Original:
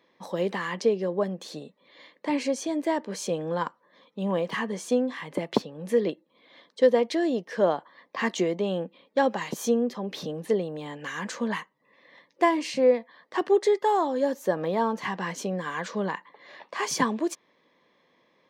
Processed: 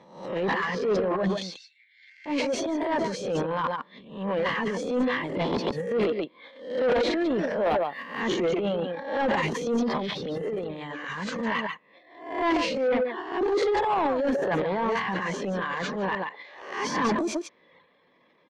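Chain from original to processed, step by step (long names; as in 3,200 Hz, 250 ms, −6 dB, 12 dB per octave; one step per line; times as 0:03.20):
peak hold with a rise ahead of every peak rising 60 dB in 0.56 s
0:01.42–0:02.26: Chebyshev high-pass with heavy ripple 1,500 Hz, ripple 9 dB
0:07.66–0:08.21: bad sample-rate conversion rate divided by 3×, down none, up hold
0:10.43–0:11.17: downward compressor 6 to 1, threshold −30 dBFS, peak gain reduction 11.5 dB
single-tap delay 140 ms −7 dB
reverb reduction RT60 0.77 s
transient designer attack −11 dB, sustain +11 dB
soft clipping −21.5 dBFS, distortion −11 dB
low-pass filter 3,600 Hz 12 dB per octave
level +2 dB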